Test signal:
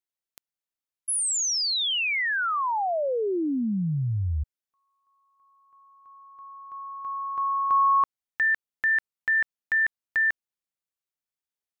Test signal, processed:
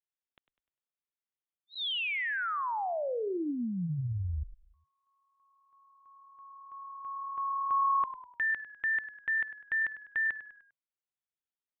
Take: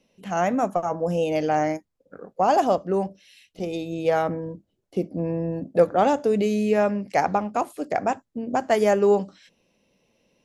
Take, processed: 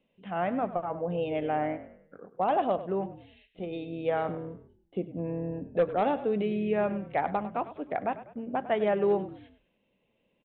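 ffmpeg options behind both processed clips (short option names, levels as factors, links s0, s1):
-filter_complex "[0:a]aresample=8000,volume=3.35,asoftclip=hard,volume=0.299,aresample=44100,asplit=5[s0][s1][s2][s3][s4];[s1]adelay=100,afreqshift=-38,volume=0.2[s5];[s2]adelay=200,afreqshift=-76,volume=0.0841[s6];[s3]adelay=300,afreqshift=-114,volume=0.0351[s7];[s4]adelay=400,afreqshift=-152,volume=0.0148[s8];[s0][s5][s6][s7][s8]amix=inputs=5:normalize=0,volume=0.447"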